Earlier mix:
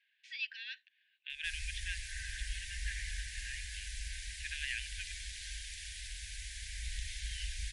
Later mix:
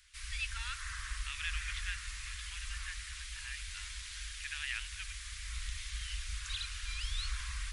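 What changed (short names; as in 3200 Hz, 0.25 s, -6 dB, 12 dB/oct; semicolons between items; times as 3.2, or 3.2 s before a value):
background: entry -1.30 s; master: remove brick-wall FIR band-stop 530–1500 Hz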